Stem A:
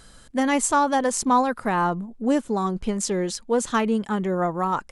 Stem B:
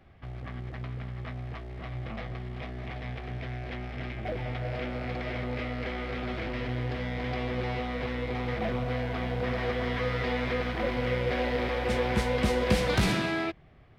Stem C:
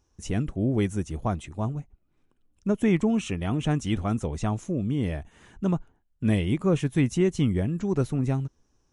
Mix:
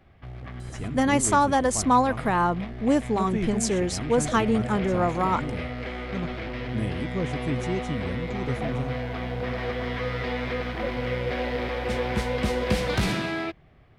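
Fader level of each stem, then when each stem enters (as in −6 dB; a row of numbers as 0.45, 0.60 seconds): −0.5, +0.5, −7.0 decibels; 0.60, 0.00, 0.50 seconds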